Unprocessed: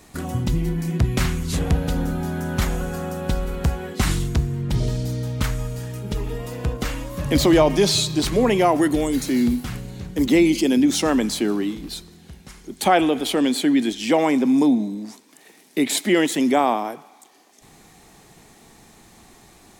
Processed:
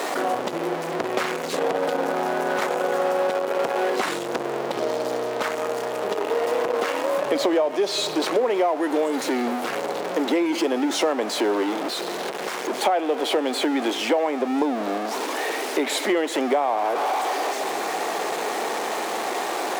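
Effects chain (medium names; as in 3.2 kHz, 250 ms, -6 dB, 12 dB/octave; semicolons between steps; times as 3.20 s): jump at every zero crossing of -20 dBFS; high-pass 480 Hz 24 dB/octave; tilt EQ -4.5 dB/octave; compression 8:1, threshold -22 dBFS, peak gain reduction 13.5 dB; trim +4 dB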